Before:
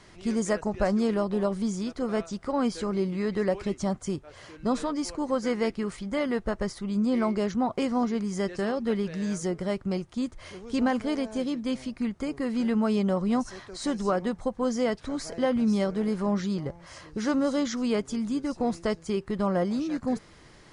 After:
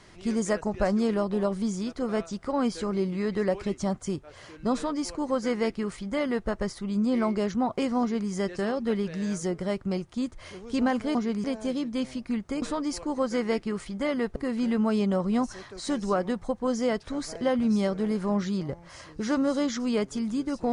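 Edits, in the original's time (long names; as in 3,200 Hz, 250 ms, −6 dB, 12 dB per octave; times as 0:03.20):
0:04.74–0:06.48: duplicate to 0:12.33
0:08.01–0:08.30: duplicate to 0:11.15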